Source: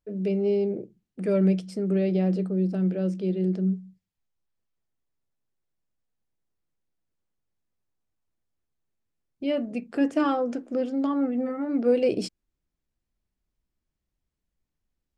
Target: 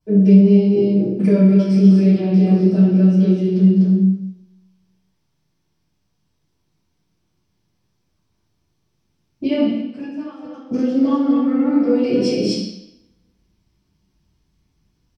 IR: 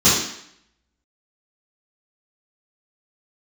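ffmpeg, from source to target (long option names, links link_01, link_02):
-filter_complex "[0:a]aecho=1:1:201.2|247.8:0.355|0.562,acompressor=threshold=-31dB:ratio=6,asettb=1/sr,asplit=3[link_01][link_02][link_03];[link_01]atrim=end=9.684[link_04];[link_02]atrim=start=9.68:end=10.71,asetpts=PTS-STARTPTS,afade=type=in:duration=0.004:curve=qsin,afade=type=out:start_time=1.026:duration=0.004:curve=qsin,agate=range=-20dB:threshold=-29dB:ratio=16:detection=peak[link_05];[link_03]atrim=start=10.706[link_06];[link_04][link_05]acrossfade=duration=0.004:curve1=hsin:curve2=qsin[link_07];[link_07][link_06]acrossfade=duration=0.004:curve1=qsin:curve2=hsin[link_08];[1:a]atrim=start_sample=2205,asetrate=37044,aresample=44100[link_09];[link_08][link_09]afir=irnorm=-1:irlink=0,volume=-8.5dB"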